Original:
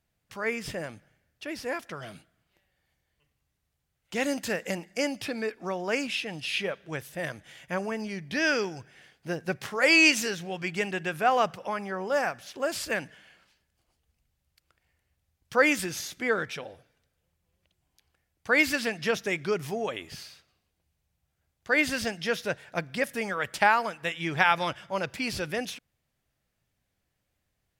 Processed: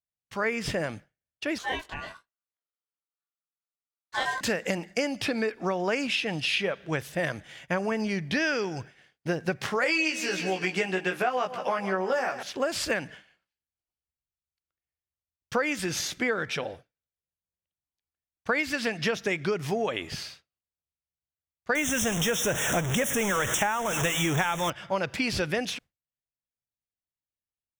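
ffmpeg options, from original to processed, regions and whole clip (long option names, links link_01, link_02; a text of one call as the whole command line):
ffmpeg -i in.wav -filter_complex "[0:a]asettb=1/sr,asplit=3[link_01][link_02][link_03];[link_01]atrim=end=1.584[link_04];[link_02]atrim=start=1.58:end=4.41,asetpts=PTS-STARTPTS,afade=type=in:duration=0.004:curve=qsin,afade=type=out:start_time=2.826:duration=0.004:curve=qsin,flanger=delay=18.5:depth=3.4:speed=1,aeval=exprs='val(0)*sin(2*PI*1300*n/s)':channel_layout=same[link_05];[link_03]atrim=start=4.406[link_06];[link_04][link_05]acrossfade=duration=0.004:curve1=hsin:curve2=qsin[link_07];[link_07][link_06]acrossfade=duration=0.004:curve1=qsin:curve2=hsin,asettb=1/sr,asplit=3[link_08][link_09][link_10];[link_08]atrim=end=9.844[link_11];[link_09]atrim=start=9.84:end=12.43,asetpts=PTS-STARTPTS,afade=type=in:duration=0.004:curve=qsin,afade=type=out:start_time=2.586:duration=0.004:curve=qsin,highpass=210,asplit=2[link_12][link_13];[link_13]adelay=16,volume=-2.5dB[link_14];[link_12][link_14]amix=inputs=2:normalize=0,atrim=end_sample=114219,aecho=1:1:156|312|468|624:0.158|0.0792|0.0396|0.0198,atrim=end_sample=114219[link_15];[link_10]atrim=start=12.426[link_16];[link_11][link_15]acrossfade=duration=0.004:curve1=hsin:curve2=qsin[link_17];[link_17][link_16]acrossfade=duration=0.004:curve1=qsin:curve2=hsin,asettb=1/sr,asplit=3[link_18][link_19][link_20];[link_18]atrim=end=21.754[link_21];[link_19]atrim=start=21.75:end=24.7,asetpts=PTS-STARTPTS,afade=type=in:duration=0.004:curve=qsin,afade=type=out:start_time=2.946:duration=0.004:curve=qsin,aeval=exprs='val(0)+0.5*0.0501*sgn(val(0))':channel_layout=same,asuperstop=centerf=4500:order=8:qfactor=2.1,highshelf=frequency=3500:width_type=q:width=1.5:gain=7.5[link_22];[link_20]atrim=start=24.696[link_23];[link_21][link_22]acrossfade=duration=0.004:curve1=hsin:curve2=qsin[link_24];[link_24][link_23]acrossfade=duration=0.004:curve1=qsin:curve2=hsin,agate=range=-33dB:threshold=-45dB:ratio=3:detection=peak,equalizer=frequency=13000:width=0.69:gain=-8,acompressor=threshold=-31dB:ratio=10,volume=7.5dB" out.wav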